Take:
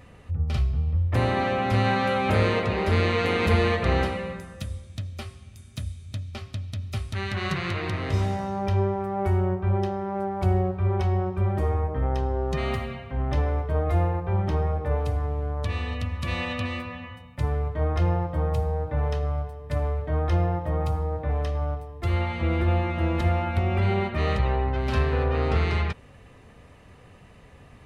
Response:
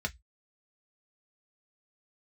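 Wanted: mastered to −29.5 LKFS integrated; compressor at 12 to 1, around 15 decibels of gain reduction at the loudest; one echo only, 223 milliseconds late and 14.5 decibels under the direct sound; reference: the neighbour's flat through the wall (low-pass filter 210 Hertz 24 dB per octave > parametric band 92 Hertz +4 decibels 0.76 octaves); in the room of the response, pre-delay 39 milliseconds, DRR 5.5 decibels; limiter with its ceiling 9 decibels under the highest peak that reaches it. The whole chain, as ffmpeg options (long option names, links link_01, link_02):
-filter_complex "[0:a]acompressor=threshold=-33dB:ratio=12,alimiter=level_in=8.5dB:limit=-24dB:level=0:latency=1,volume=-8.5dB,aecho=1:1:223:0.188,asplit=2[link_01][link_02];[1:a]atrim=start_sample=2205,adelay=39[link_03];[link_02][link_03]afir=irnorm=-1:irlink=0,volume=-9.5dB[link_04];[link_01][link_04]amix=inputs=2:normalize=0,lowpass=frequency=210:width=0.5412,lowpass=frequency=210:width=1.3066,equalizer=frequency=92:width_type=o:width=0.76:gain=4,volume=5dB"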